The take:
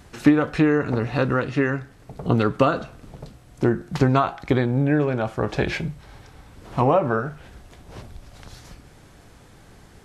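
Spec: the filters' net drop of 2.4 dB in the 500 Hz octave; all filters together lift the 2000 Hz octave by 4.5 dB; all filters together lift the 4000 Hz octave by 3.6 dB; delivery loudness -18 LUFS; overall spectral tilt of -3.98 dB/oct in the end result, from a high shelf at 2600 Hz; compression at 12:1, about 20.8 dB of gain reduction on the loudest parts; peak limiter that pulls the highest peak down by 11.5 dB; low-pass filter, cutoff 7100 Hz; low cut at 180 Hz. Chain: HPF 180 Hz; LPF 7100 Hz; bell 500 Hz -3 dB; bell 2000 Hz +6.5 dB; high shelf 2600 Hz -3 dB; bell 4000 Hz +5 dB; compressor 12:1, threshold -33 dBFS; gain +24.5 dB; limiter -5 dBFS

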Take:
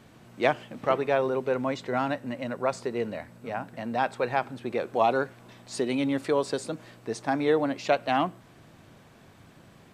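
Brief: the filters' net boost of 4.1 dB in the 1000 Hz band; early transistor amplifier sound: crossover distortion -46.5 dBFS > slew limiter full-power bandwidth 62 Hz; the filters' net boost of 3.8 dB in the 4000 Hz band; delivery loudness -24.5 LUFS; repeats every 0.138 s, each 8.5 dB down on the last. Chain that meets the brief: bell 1000 Hz +5.5 dB; bell 4000 Hz +4.5 dB; feedback echo 0.138 s, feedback 38%, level -8.5 dB; crossover distortion -46.5 dBFS; slew limiter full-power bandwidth 62 Hz; gain +4 dB

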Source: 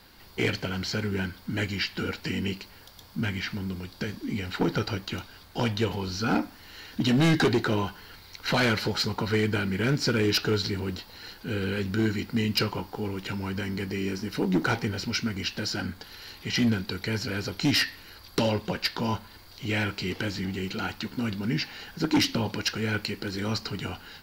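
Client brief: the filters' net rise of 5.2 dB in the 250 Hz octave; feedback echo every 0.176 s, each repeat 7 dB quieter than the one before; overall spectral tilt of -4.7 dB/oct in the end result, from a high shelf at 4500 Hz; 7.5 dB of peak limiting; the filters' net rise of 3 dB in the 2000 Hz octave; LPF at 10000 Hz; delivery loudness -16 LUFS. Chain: LPF 10000 Hz; bell 250 Hz +6.5 dB; bell 2000 Hz +5.5 dB; high shelf 4500 Hz -8.5 dB; limiter -18.5 dBFS; feedback echo 0.176 s, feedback 45%, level -7 dB; gain +12 dB

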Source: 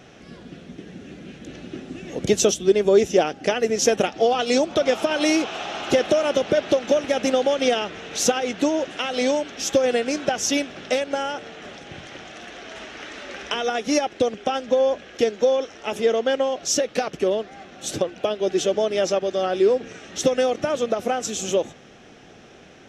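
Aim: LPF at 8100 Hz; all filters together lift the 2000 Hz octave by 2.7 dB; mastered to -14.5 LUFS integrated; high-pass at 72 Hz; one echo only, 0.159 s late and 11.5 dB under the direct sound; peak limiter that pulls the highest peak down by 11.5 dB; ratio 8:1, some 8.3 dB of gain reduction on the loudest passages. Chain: HPF 72 Hz; LPF 8100 Hz; bell 2000 Hz +3.5 dB; compressor 8:1, threshold -21 dBFS; limiter -20.5 dBFS; echo 0.159 s -11.5 dB; gain +16 dB

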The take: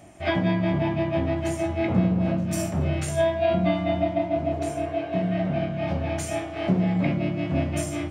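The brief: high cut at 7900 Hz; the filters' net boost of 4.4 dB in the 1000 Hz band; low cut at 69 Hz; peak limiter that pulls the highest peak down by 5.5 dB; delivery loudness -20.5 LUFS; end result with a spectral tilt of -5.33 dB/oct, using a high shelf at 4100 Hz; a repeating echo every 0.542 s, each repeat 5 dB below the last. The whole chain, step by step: HPF 69 Hz; LPF 7900 Hz; bell 1000 Hz +7 dB; high shelf 4100 Hz +3.5 dB; limiter -15 dBFS; feedback echo 0.542 s, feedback 56%, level -5 dB; gain +3 dB

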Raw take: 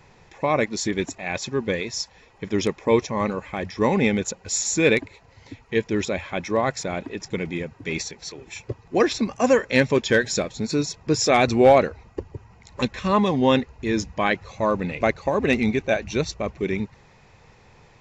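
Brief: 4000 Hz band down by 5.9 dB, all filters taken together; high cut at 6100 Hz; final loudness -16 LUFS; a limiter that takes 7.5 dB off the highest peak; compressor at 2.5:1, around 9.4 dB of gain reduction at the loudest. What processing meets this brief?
LPF 6100 Hz; bell 4000 Hz -6.5 dB; compressor 2.5:1, threshold -24 dBFS; gain +15 dB; limiter -4 dBFS

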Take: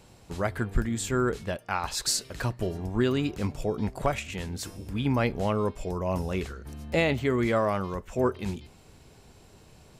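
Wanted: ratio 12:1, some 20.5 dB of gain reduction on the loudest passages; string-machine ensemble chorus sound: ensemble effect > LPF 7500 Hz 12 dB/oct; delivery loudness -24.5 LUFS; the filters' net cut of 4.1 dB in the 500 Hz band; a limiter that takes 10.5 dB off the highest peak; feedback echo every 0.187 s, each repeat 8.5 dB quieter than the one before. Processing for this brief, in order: bell 500 Hz -5.5 dB; compressor 12:1, threshold -40 dBFS; limiter -37.5 dBFS; feedback echo 0.187 s, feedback 38%, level -8.5 dB; ensemble effect; LPF 7500 Hz 12 dB/oct; gain +26 dB

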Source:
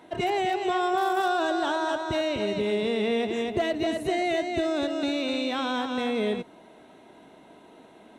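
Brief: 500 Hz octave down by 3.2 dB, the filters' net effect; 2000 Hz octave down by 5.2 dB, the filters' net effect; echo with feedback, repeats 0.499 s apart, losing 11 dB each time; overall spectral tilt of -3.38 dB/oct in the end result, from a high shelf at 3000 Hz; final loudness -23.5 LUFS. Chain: bell 500 Hz -4 dB; bell 2000 Hz -5 dB; high shelf 3000 Hz -5 dB; feedback echo 0.499 s, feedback 28%, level -11 dB; gain +6 dB

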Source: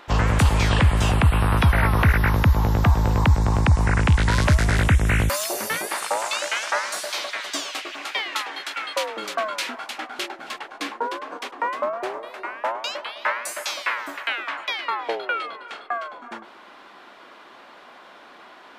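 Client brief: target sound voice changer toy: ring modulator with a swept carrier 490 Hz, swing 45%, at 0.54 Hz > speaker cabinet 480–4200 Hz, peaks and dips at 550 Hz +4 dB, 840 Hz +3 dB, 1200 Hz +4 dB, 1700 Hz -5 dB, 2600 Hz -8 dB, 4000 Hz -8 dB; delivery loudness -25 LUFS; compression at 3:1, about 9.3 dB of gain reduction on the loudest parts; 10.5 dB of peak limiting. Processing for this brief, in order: compressor 3:1, threshold -25 dBFS; limiter -23.5 dBFS; ring modulator with a swept carrier 490 Hz, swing 45%, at 0.54 Hz; speaker cabinet 480–4200 Hz, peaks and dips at 550 Hz +4 dB, 840 Hz +3 dB, 1200 Hz +4 dB, 1700 Hz -5 dB, 2600 Hz -8 dB, 4000 Hz -8 dB; gain +11.5 dB

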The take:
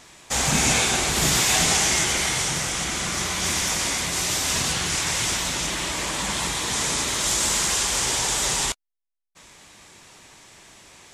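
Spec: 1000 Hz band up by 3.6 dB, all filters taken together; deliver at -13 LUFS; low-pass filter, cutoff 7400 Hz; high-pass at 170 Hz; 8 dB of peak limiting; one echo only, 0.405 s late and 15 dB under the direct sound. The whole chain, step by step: HPF 170 Hz; LPF 7400 Hz; bell 1000 Hz +4.5 dB; limiter -15 dBFS; echo 0.405 s -15 dB; gain +10.5 dB

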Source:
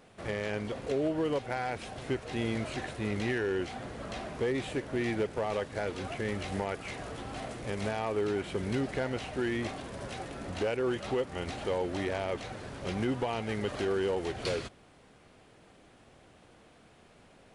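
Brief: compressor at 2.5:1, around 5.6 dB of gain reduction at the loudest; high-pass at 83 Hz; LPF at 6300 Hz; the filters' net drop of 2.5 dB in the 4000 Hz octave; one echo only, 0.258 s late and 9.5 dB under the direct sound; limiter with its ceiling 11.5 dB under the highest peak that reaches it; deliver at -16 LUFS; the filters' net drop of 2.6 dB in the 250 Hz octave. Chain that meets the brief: HPF 83 Hz; LPF 6300 Hz; bell 250 Hz -3.5 dB; bell 4000 Hz -3 dB; compressor 2.5:1, threshold -36 dBFS; limiter -35.5 dBFS; echo 0.258 s -9.5 dB; gain +28 dB

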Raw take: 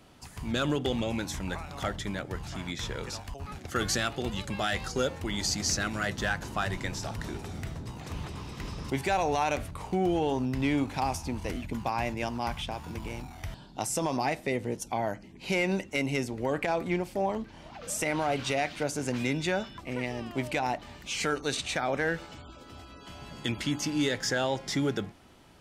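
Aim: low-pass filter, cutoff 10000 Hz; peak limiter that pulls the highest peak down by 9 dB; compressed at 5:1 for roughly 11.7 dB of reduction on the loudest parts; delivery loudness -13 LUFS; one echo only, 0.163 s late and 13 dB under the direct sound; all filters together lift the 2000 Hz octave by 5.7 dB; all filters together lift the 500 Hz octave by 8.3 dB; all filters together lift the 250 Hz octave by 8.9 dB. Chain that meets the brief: LPF 10000 Hz; bell 250 Hz +8.5 dB; bell 500 Hz +7.5 dB; bell 2000 Hz +6.5 dB; compressor 5:1, threshold -29 dBFS; limiter -24.5 dBFS; echo 0.163 s -13 dB; gain +22 dB

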